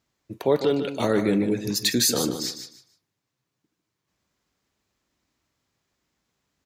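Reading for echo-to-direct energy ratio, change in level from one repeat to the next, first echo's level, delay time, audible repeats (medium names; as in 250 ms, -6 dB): -9.0 dB, -13.0 dB, -9.0 dB, 151 ms, 3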